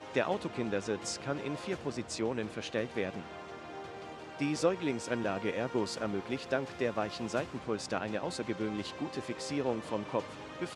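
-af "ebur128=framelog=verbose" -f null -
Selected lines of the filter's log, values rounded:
Integrated loudness:
  I:         -35.6 LUFS
  Threshold: -45.6 LUFS
Loudness range:
  LRA:         3.2 LU
  Threshold: -55.5 LUFS
  LRA low:   -37.1 LUFS
  LRA high:  -34.0 LUFS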